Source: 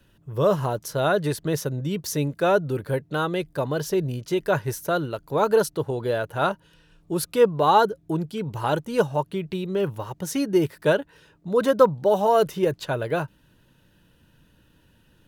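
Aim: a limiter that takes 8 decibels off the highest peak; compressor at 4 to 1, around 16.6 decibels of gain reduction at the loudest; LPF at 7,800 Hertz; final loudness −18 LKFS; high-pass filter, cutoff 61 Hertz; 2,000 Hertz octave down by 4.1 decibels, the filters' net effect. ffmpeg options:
ffmpeg -i in.wav -af "highpass=61,lowpass=7800,equalizer=frequency=2000:width_type=o:gain=-6.5,acompressor=threshold=-32dB:ratio=4,volume=19dB,alimiter=limit=-7.5dB:level=0:latency=1" out.wav

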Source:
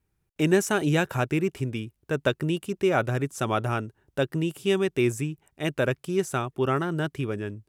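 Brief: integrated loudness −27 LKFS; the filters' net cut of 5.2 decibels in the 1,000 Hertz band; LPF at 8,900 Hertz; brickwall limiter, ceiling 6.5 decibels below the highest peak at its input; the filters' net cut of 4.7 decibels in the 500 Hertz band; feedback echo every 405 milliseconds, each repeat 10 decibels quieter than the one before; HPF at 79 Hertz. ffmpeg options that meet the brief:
ffmpeg -i in.wav -af "highpass=79,lowpass=8900,equalizer=frequency=500:width_type=o:gain=-5.5,equalizer=frequency=1000:width_type=o:gain=-6,alimiter=limit=-18dB:level=0:latency=1,aecho=1:1:405|810|1215|1620:0.316|0.101|0.0324|0.0104,volume=3.5dB" out.wav

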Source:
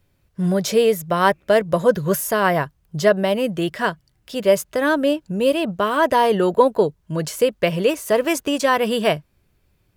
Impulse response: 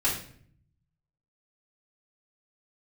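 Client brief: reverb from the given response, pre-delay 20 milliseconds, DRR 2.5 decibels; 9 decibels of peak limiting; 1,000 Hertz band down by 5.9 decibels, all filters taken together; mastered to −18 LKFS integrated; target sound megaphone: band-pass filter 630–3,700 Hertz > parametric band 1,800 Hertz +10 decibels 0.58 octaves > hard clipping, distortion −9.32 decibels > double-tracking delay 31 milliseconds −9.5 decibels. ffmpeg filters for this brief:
-filter_complex "[0:a]equalizer=frequency=1000:width_type=o:gain=-7.5,alimiter=limit=-13.5dB:level=0:latency=1,asplit=2[link_01][link_02];[1:a]atrim=start_sample=2205,adelay=20[link_03];[link_02][link_03]afir=irnorm=-1:irlink=0,volume=-13dB[link_04];[link_01][link_04]amix=inputs=2:normalize=0,highpass=630,lowpass=3700,equalizer=frequency=1800:width_type=o:width=0.58:gain=10,asoftclip=type=hard:threshold=-21.5dB,asplit=2[link_05][link_06];[link_06]adelay=31,volume=-9.5dB[link_07];[link_05][link_07]amix=inputs=2:normalize=0,volume=8.5dB"

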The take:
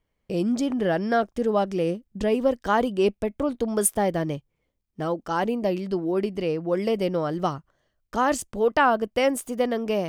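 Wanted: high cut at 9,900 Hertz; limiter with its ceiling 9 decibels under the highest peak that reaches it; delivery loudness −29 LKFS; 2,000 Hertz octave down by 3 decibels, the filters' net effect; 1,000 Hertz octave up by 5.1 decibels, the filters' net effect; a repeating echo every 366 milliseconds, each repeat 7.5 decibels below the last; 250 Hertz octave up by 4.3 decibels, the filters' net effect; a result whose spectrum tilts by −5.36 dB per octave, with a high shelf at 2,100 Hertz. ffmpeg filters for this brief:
ffmpeg -i in.wav -af "lowpass=9900,equalizer=frequency=250:width_type=o:gain=5,equalizer=frequency=1000:width_type=o:gain=8.5,equalizer=frequency=2000:width_type=o:gain=-6,highshelf=frequency=2100:gain=-4.5,alimiter=limit=-15.5dB:level=0:latency=1,aecho=1:1:366|732|1098|1464|1830:0.422|0.177|0.0744|0.0312|0.0131,volume=-4.5dB" out.wav

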